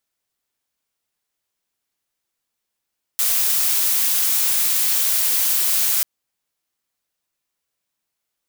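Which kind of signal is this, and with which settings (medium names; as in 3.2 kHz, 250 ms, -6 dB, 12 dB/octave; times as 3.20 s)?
noise blue, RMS -18.5 dBFS 2.84 s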